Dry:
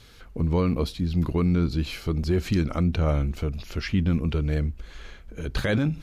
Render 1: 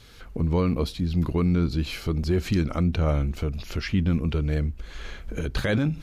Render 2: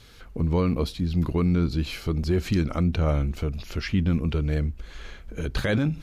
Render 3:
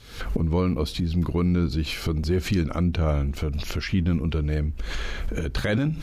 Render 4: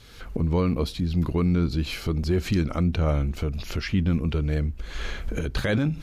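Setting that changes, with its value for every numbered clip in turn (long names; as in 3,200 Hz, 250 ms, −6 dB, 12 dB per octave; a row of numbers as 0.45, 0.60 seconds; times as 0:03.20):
camcorder AGC, rising by: 13, 5.1, 78, 31 dB per second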